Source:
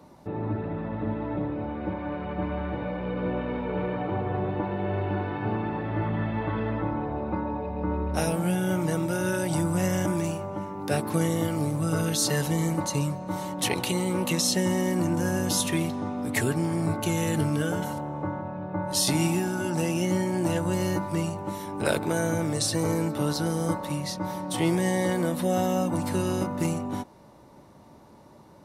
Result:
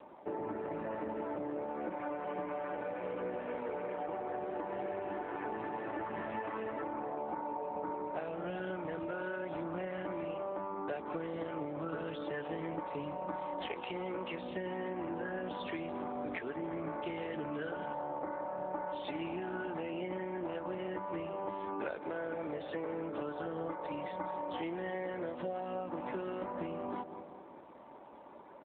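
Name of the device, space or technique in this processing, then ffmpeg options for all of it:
voicemail: -filter_complex "[0:a]lowpass=frequency=12000:width=0.5412,lowpass=frequency=12000:width=1.3066,asettb=1/sr,asplit=3[link_01][link_02][link_03];[link_01]atrim=end=7.154[link_04];[link_02]atrim=start=7.15:end=7.97,asetpts=PTS-STARTPTS,afade=type=in:duration=0.004:curve=qsin,afade=type=out:start_time=0.816:duration=0.004:curve=qsin,adynamicequalizer=threshold=0.00316:dfrequency=820:dqfactor=4.8:tfrequency=820:tqfactor=4.8:attack=5:release=100:ratio=0.375:range=3:mode=boostabove:tftype=bell[link_05];[link_03]atrim=start=7.966[link_06];[link_04][link_05]acrossfade=duration=0.004:curve1=hsin:curve2=qsin[link_07];[link_07][link_06]acrossfade=duration=0.004:curve1=qsin:curve2=hsin,highpass=380,lowpass=2800,asplit=2[link_08][link_09];[link_09]adelay=189,lowpass=frequency=1300:poles=1,volume=-13.5dB,asplit=2[link_10][link_11];[link_11]adelay=189,lowpass=frequency=1300:poles=1,volume=0.54,asplit=2[link_12][link_13];[link_13]adelay=189,lowpass=frequency=1300:poles=1,volume=0.54,asplit=2[link_14][link_15];[link_15]adelay=189,lowpass=frequency=1300:poles=1,volume=0.54,asplit=2[link_16][link_17];[link_17]adelay=189,lowpass=frequency=1300:poles=1,volume=0.54[link_18];[link_08][link_10][link_12][link_14][link_16][link_18]amix=inputs=6:normalize=0,acompressor=threshold=-37dB:ratio=12,volume=3dB" -ar 8000 -c:a libopencore_amrnb -b:a 7400

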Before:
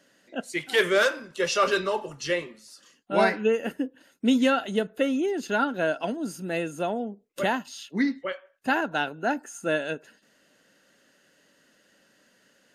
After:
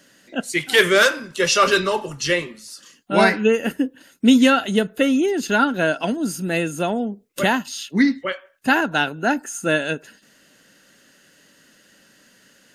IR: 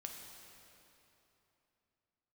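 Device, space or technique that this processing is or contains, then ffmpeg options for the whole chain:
smiley-face EQ: -af "lowshelf=frequency=150:gain=4,equalizer=frequency=600:width_type=o:width=1.6:gain=-4.5,highshelf=frequency=6500:gain=4.5,volume=8.5dB"

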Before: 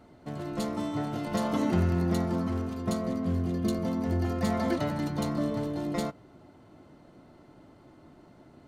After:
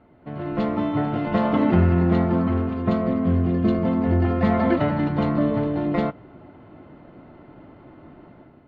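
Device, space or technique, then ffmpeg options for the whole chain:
action camera in a waterproof case: -af "lowpass=frequency=2900:width=0.5412,lowpass=frequency=2900:width=1.3066,dynaudnorm=framelen=150:gausssize=5:maxgain=8.5dB" -ar 32000 -c:a aac -b:a 64k

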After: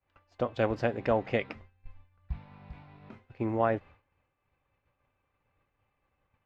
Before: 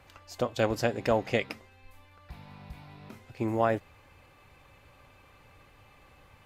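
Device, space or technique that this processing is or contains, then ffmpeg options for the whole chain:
hearing-loss simulation: -filter_complex "[0:a]lowpass=2600,agate=range=-33dB:threshold=-45dB:ratio=3:detection=peak,asplit=3[link_01][link_02][link_03];[link_01]afade=type=out:start_time=1.55:duration=0.02[link_04];[link_02]asubboost=boost=6.5:cutoff=170,afade=type=in:start_time=1.55:duration=0.02,afade=type=out:start_time=2.37:duration=0.02[link_05];[link_03]afade=type=in:start_time=2.37:duration=0.02[link_06];[link_04][link_05][link_06]amix=inputs=3:normalize=0,volume=-1dB"

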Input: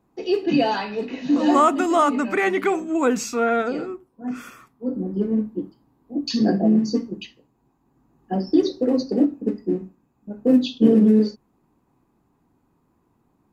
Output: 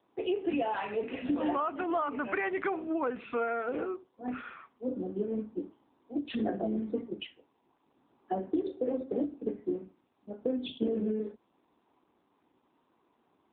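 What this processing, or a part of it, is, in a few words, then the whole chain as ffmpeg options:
voicemail: -af "highpass=380,lowpass=3300,acompressor=threshold=-27dB:ratio=12" -ar 8000 -c:a libopencore_amrnb -b:a 7950

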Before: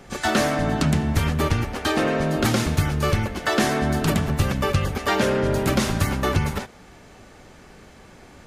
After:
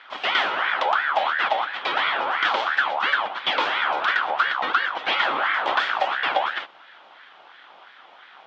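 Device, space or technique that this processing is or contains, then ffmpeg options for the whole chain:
voice changer toy: -af "aeval=exprs='val(0)*sin(2*PI*1200*n/s+1200*0.45/2.9*sin(2*PI*2.9*n/s))':channel_layout=same,lowpass=frequency=9100:width=0.5412,lowpass=frequency=9100:width=1.3066,highpass=440,equalizer=frequency=450:width_type=q:width=4:gain=-5,equalizer=frequency=780:width_type=q:width=4:gain=4,equalizer=frequency=1400:width_type=q:width=4:gain=3,equalizer=frequency=3300:width_type=q:width=4:gain=8,lowpass=frequency=4000:width=0.5412,lowpass=frequency=4000:width=1.3066"

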